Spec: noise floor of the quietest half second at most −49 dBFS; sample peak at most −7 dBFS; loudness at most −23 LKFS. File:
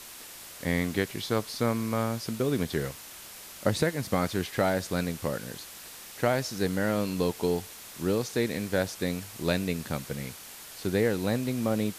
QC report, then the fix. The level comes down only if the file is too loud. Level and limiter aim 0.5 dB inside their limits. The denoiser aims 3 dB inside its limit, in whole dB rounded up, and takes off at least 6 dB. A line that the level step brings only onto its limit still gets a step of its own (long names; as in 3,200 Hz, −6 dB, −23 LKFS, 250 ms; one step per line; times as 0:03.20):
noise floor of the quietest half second −45 dBFS: out of spec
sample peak −11.5 dBFS: in spec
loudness −29.5 LKFS: in spec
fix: broadband denoise 7 dB, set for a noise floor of −45 dBFS